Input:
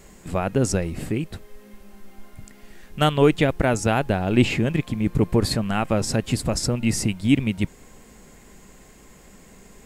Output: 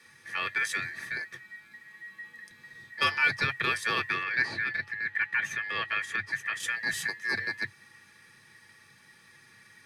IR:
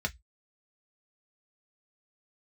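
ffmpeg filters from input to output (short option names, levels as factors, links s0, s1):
-filter_complex "[0:a]asettb=1/sr,asplit=3[s0][s1][s2];[s0]atrim=end=4.234[s3];[s1]atrim=start=4.23:end=6.6,asetpts=PTS-STARTPTS,afade=t=in:d=0.004:c=qsin,afade=t=out:st=2.366:d=0.004:c=qsin,highshelf=f=2600:g=-11[s4];[s2]atrim=start=6.596[s5];[s3][s4]acrossfade=d=0.004:c1=hsin:c2=qsin[s6];[s6][s5]acrossfade=d=0.004:c1=qsin:c2=hsin,aeval=exprs='val(0)*sin(2*PI*1900*n/s)':c=same[s7];[1:a]atrim=start_sample=2205,asetrate=79380,aresample=44100[s8];[s7][s8]afir=irnorm=-1:irlink=0,volume=0.562"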